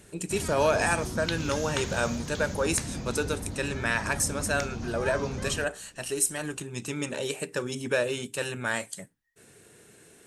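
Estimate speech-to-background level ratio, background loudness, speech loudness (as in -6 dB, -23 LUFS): 6.0 dB, -35.5 LUFS, -29.5 LUFS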